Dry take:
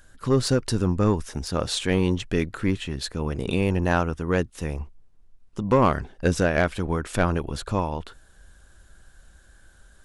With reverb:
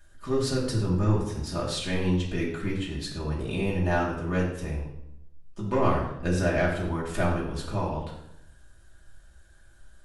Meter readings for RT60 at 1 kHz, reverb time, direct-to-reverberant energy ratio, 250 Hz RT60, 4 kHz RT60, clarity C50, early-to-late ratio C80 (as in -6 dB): 0.75 s, 0.80 s, -6.0 dB, 1.0 s, 0.65 s, 4.0 dB, 7.0 dB